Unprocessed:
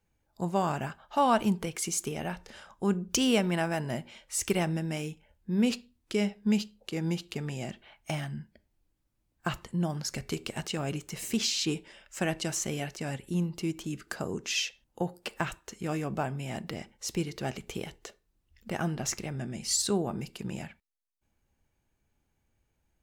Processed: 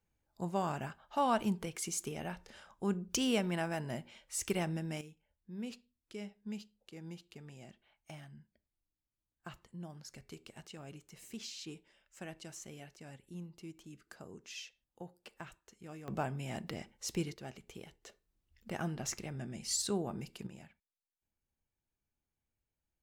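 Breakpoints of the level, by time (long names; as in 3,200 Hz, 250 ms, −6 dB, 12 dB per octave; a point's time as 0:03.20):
−6.5 dB
from 0:05.01 −16.5 dB
from 0:16.08 −4.5 dB
from 0:17.34 −13 dB
from 0:18.06 −6.5 dB
from 0:20.47 −15 dB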